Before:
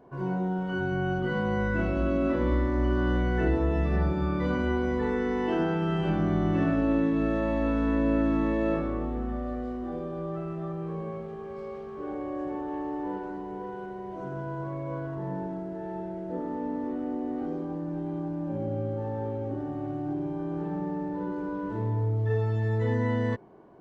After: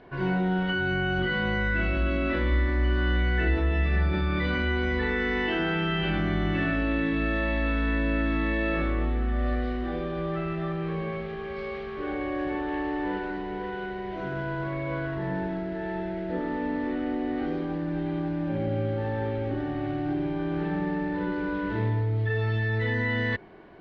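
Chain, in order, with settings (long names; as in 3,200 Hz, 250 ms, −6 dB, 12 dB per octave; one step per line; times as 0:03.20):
octave-band graphic EQ 125/250/500/1,000/2,000/4,000 Hz −9/−7/−7/−9/+7/+9 dB
in parallel at −1 dB: compressor whose output falls as the input rises −37 dBFS, ratio −0.5
on the sum: high-frequency loss of the air 240 metres
level +5 dB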